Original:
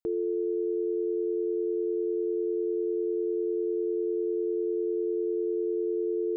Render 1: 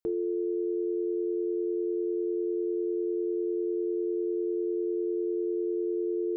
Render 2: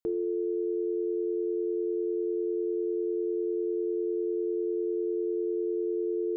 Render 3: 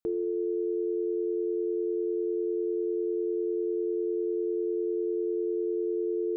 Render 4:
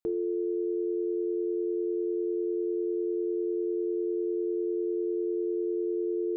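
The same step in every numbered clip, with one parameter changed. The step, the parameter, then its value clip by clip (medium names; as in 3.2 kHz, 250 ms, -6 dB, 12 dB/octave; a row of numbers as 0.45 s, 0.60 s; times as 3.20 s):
gated-style reverb, gate: 100 ms, 250 ms, 430 ms, 160 ms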